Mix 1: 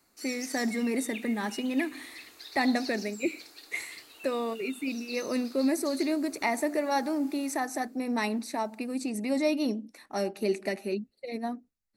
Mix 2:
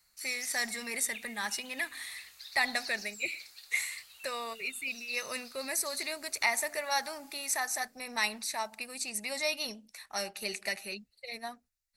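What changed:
speech +7.5 dB; master: add passive tone stack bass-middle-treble 10-0-10

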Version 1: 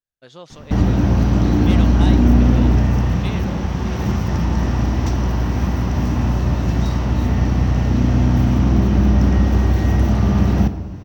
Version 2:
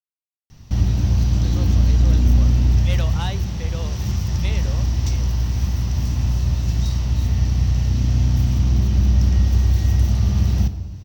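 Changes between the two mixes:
speech: entry +1.20 s; background: add EQ curve 100 Hz 0 dB, 260 Hz -13 dB, 1500 Hz -12 dB, 4600 Hz +3 dB

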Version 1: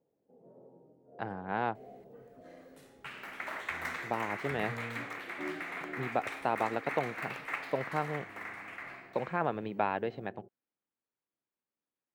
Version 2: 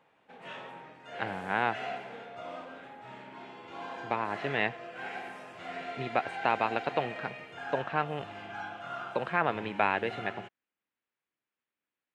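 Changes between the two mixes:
first sound: remove ladder low-pass 580 Hz, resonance 35%; second sound: muted; master: add bell 2400 Hz +11 dB 1.9 oct

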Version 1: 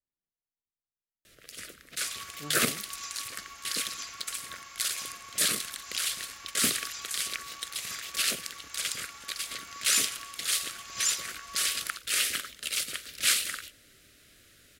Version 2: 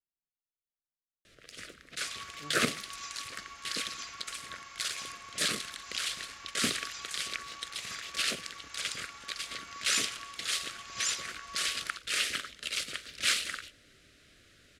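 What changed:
speech -6.0 dB; master: add air absorption 64 m

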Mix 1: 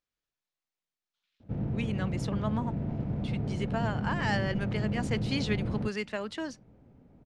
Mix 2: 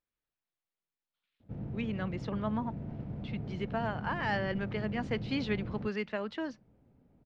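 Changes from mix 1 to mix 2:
speech: add air absorption 210 m; background -7.5 dB

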